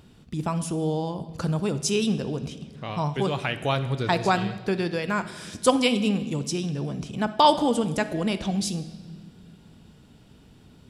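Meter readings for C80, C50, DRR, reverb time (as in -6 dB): 14.5 dB, 12.0 dB, 11.0 dB, 1.5 s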